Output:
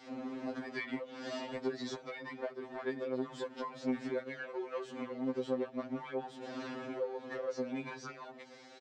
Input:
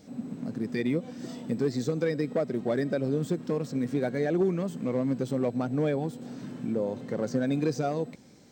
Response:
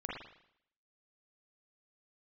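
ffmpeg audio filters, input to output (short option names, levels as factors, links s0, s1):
-filter_complex "[0:a]asetrate=42645,aresample=44100,asplit=2[s0][s1];[s1]volume=22.4,asoftclip=hard,volume=0.0447,volume=0.708[s2];[s0][s2]amix=inputs=2:normalize=0,highpass=550,lowpass=3600,acompressor=threshold=0.01:ratio=6,afftfilt=real='re*2.45*eq(mod(b,6),0)':imag='im*2.45*eq(mod(b,6),0)':win_size=2048:overlap=0.75,volume=2.11"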